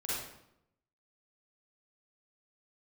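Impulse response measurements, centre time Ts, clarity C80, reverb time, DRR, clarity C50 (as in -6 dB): 81 ms, 1.5 dB, 0.80 s, -9.0 dB, -4.5 dB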